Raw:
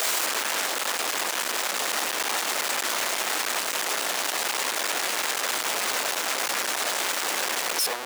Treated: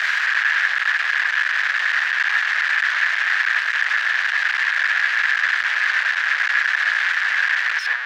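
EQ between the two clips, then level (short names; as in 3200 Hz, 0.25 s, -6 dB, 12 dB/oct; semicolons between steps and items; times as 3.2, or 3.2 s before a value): resonant high-pass 1700 Hz, resonance Q 7.5; air absorption 220 m; high shelf 10000 Hz -4.5 dB; +3.5 dB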